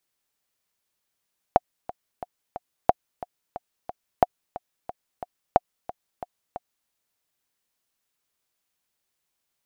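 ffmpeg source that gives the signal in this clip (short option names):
-f lavfi -i "aevalsrc='pow(10,(-2-17.5*gte(mod(t,4*60/180),60/180))/20)*sin(2*PI*723*mod(t,60/180))*exp(-6.91*mod(t,60/180)/0.03)':d=5.33:s=44100"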